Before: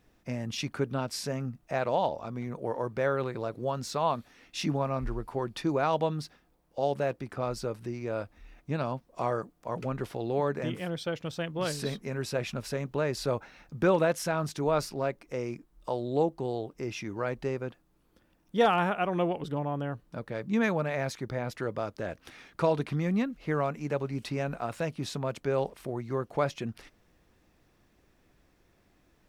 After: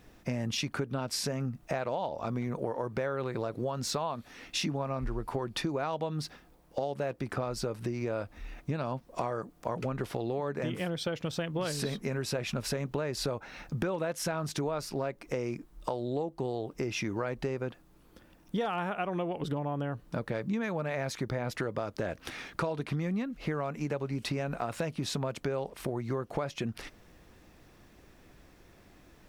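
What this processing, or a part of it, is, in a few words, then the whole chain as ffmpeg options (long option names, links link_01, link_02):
serial compression, leveller first: -af "acompressor=threshold=-36dB:ratio=1.5,acompressor=threshold=-38dB:ratio=6,volume=8.5dB"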